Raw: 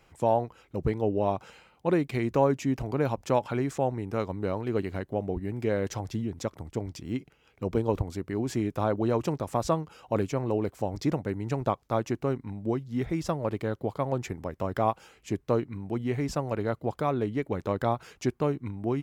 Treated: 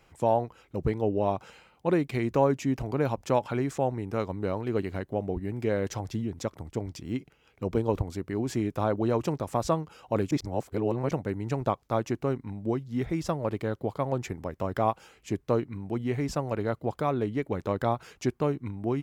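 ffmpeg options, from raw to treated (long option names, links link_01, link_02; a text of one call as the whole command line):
ffmpeg -i in.wav -filter_complex "[0:a]asplit=3[link_01][link_02][link_03];[link_01]atrim=end=10.312[link_04];[link_02]atrim=start=10.308:end=11.112,asetpts=PTS-STARTPTS,areverse[link_05];[link_03]atrim=start=11.108[link_06];[link_04][link_05]acrossfade=duration=0.004:curve1=hsin:curve2=hsin[link_07];[link_07][link_06]acrossfade=duration=0.004:curve1=hsin:curve2=hsin" out.wav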